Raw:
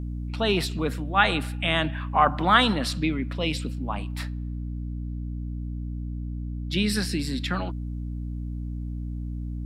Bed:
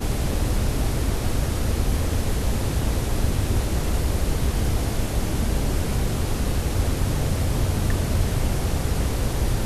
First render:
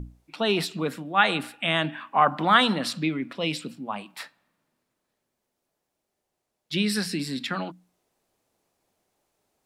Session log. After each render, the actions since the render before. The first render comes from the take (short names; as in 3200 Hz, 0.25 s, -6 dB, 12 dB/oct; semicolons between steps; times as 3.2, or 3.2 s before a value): notches 60/120/180/240/300 Hz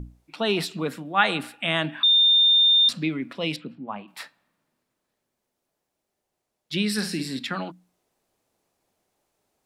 2.03–2.89 bleep 3620 Hz -14 dBFS; 3.56–4.08 air absorption 400 m; 6.93–7.39 flutter echo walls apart 8.8 m, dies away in 0.33 s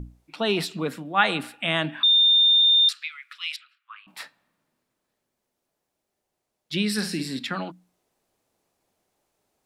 2.62–4.07 steep high-pass 1200 Hz 72 dB/oct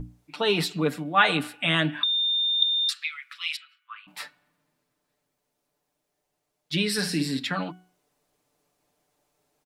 comb 6.8 ms, depth 63%; de-hum 369.1 Hz, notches 9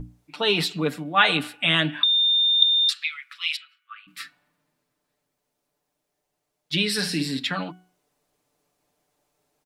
3.81–4.31 spectral repair 390–1100 Hz both; dynamic EQ 3300 Hz, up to +5 dB, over -38 dBFS, Q 1.1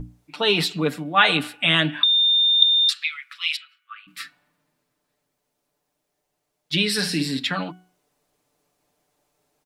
gain +2 dB; limiter -2 dBFS, peak gain reduction 1 dB